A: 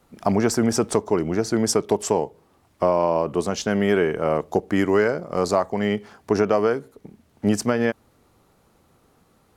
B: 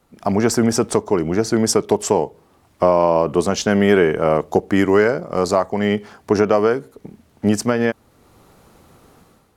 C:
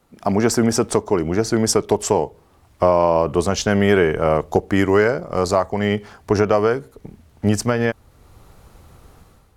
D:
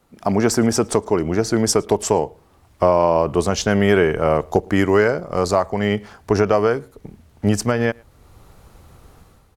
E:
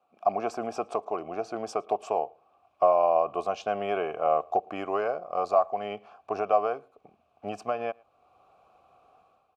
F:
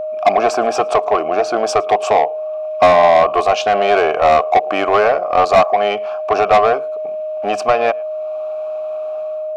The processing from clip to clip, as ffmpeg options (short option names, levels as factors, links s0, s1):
-af "dynaudnorm=f=100:g=7:m=3.55,volume=0.891"
-af "asubboost=boost=4.5:cutoff=100"
-filter_complex "[0:a]asplit=2[s0][s1];[s1]adelay=110.8,volume=0.0398,highshelf=f=4000:g=-2.49[s2];[s0][s2]amix=inputs=2:normalize=0"
-filter_complex "[0:a]asplit=3[s0][s1][s2];[s0]bandpass=f=730:t=q:w=8,volume=1[s3];[s1]bandpass=f=1090:t=q:w=8,volume=0.501[s4];[s2]bandpass=f=2440:t=q:w=8,volume=0.355[s5];[s3][s4][s5]amix=inputs=3:normalize=0,volume=1.26"
-filter_complex "[0:a]asplit=2[s0][s1];[s1]highpass=f=720:p=1,volume=11.2,asoftclip=type=tanh:threshold=0.376[s2];[s0][s2]amix=inputs=2:normalize=0,lowpass=f=5500:p=1,volume=0.501,aeval=exprs='val(0)+0.0447*sin(2*PI*620*n/s)':c=same,volume=2.11"